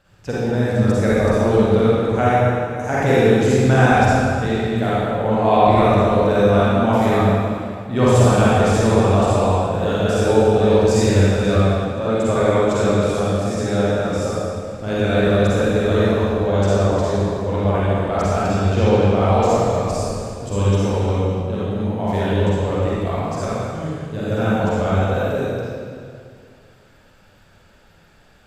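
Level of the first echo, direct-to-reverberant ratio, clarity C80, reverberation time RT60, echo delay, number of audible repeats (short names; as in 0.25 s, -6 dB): none, -9.5 dB, -3.5 dB, 2.3 s, none, none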